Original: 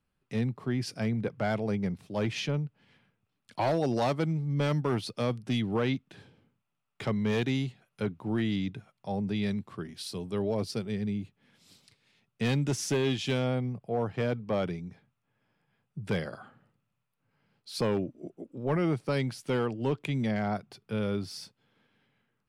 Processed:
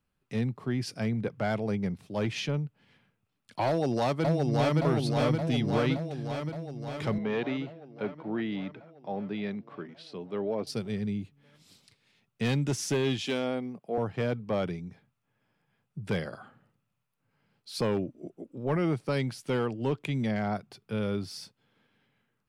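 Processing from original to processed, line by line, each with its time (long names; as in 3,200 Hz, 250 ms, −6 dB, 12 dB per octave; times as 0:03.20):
0:03.67–0:04.78: delay throw 570 ms, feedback 70%, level −1.5 dB
0:07.18–0:10.67: band-pass filter 230–2,600 Hz
0:13.25–0:13.98: high-pass filter 190 Hz 24 dB per octave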